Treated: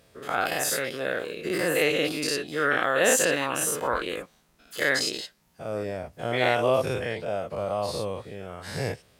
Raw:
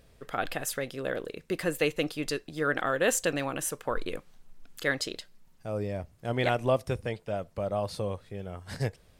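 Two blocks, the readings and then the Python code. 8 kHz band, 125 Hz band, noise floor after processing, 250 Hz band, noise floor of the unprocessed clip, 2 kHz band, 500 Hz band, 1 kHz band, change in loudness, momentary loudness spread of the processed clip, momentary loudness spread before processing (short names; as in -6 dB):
+7.0 dB, -1.5 dB, -62 dBFS, +2.0 dB, -60 dBFS, +6.5 dB, +4.5 dB, +5.5 dB, +5.0 dB, 13 LU, 10 LU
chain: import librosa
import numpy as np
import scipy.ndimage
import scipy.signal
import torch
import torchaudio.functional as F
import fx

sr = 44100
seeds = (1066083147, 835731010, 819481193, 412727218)

y = fx.spec_dilate(x, sr, span_ms=120)
y = scipy.signal.sosfilt(scipy.signal.butter(2, 77.0, 'highpass', fs=sr, output='sos'), y)
y = fx.low_shelf(y, sr, hz=290.0, db=-5.0)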